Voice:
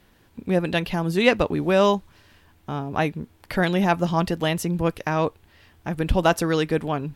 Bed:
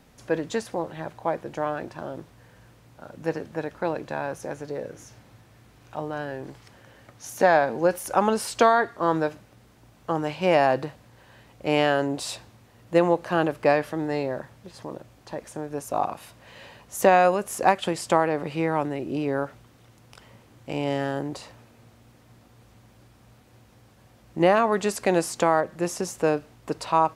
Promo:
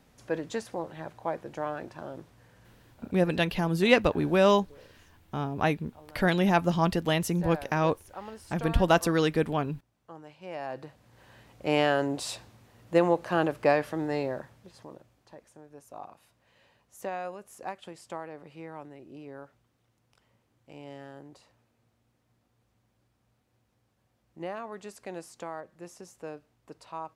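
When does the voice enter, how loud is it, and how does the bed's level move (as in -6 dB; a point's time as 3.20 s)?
2.65 s, -3.0 dB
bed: 2.77 s -5.5 dB
3.51 s -20.5 dB
10.48 s -20.5 dB
11.24 s -3 dB
14.26 s -3 dB
15.58 s -18 dB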